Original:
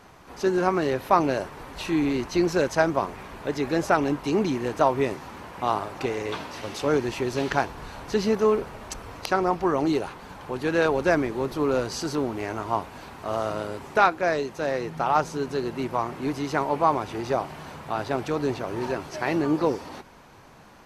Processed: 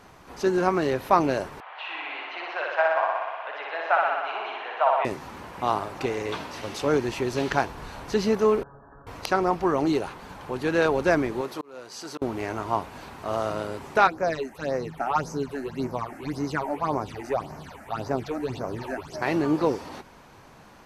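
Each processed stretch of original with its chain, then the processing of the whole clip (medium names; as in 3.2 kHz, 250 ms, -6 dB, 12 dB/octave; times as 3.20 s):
1.60–5.05 s: elliptic band-pass 680–3100 Hz, stop band 80 dB + flutter echo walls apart 10.4 m, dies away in 1.5 s
8.63–9.07 s: brick-wall FIR low-pass 1.8 kHz + feedback comb 140 Hz, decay 0.21 s, mix 90%
11.41–12.22 s: high-pass 510 Hz 6 dB/octave + slow attack 761 ms
14.07–19.22 s: phase shifter stages 8, 1.8 Hz, lowest notch 130–3500 Hz + band-stop 350 Hz, Q 11
whole clip: none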